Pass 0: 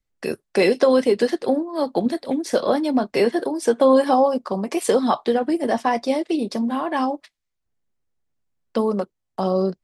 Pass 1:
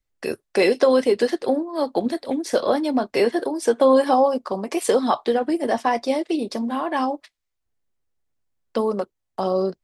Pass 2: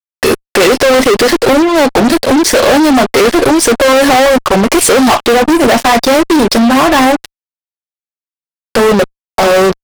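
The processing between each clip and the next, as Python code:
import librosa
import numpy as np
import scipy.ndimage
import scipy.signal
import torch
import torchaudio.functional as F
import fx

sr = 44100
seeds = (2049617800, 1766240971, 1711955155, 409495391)

y1 = fx.peak_eq(x, sr, hz=180.0, db=-6.0, octaves=0.75)
y2 = fx.fuzz(y1, sr, gain_db=35.0, gate_db=-39.0)
y2 = F.gain(torch.from_numpy(y2), 7.5).numpy()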